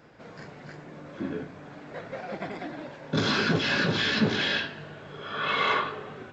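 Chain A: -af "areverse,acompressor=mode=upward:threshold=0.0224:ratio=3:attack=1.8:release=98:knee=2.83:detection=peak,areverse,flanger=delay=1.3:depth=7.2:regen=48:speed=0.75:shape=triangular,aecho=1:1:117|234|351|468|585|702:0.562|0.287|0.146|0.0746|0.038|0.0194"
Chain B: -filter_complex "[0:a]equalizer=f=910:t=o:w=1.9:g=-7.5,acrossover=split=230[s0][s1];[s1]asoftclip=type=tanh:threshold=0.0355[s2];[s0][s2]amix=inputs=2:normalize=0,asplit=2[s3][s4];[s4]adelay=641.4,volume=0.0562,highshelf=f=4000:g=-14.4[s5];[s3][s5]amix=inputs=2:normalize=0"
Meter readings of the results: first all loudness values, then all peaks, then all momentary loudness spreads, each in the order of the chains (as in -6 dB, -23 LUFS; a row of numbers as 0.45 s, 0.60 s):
-30.5 LUFS, -33.0 LUFS; -14.5 dBFS, -17.5 dBFS; 16 LU, 18 LU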